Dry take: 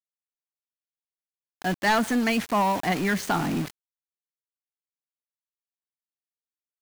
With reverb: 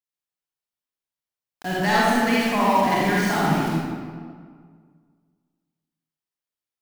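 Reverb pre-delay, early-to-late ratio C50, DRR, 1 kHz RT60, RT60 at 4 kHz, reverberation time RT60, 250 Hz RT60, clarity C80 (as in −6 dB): 36 ms, −5.0 dB, −6.5 dB, 1.8 s, 1.2 s, 1.9 s, 2.0 s, −1.5 dB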